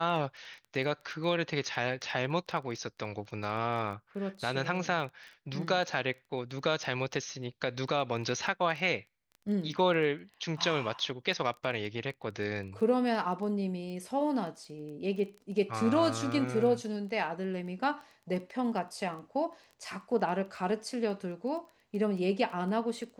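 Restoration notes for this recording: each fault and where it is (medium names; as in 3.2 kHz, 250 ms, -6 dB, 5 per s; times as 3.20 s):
crackle 12 per s -40 dBFS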